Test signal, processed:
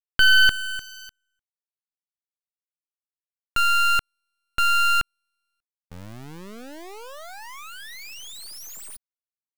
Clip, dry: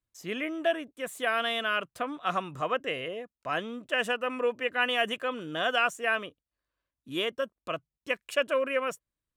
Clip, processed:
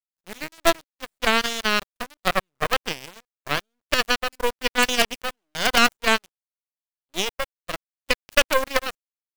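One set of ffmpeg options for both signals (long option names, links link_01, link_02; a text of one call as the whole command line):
ffmpeg -i in.wav -af "acrusher=bits=4:dc=4:mix=0:aa=0.000001,aeval=exprs='0.282*(cos(1*acos(clip(val(0)/0.282,-1,1)))-cos(1*PI/2))+0.0112*(cos(3*acos(clip(val(0)/0.282,-1,1)))-cos(3*PI/2))+0.0562*(cos(6*acos(clip(val(0)/0.282,-1,1)))-cos(6*PI/2))+0.0447*(cos(7*acos(clip(val(0)/0.282,-1,1)))-cos(7*PI/2))+0.00282*(cos(8*acos(clip(val(0)/0.282,-1,1)))-cos(8*PI/2))':channel_layout=same,volume=8dB" out.wav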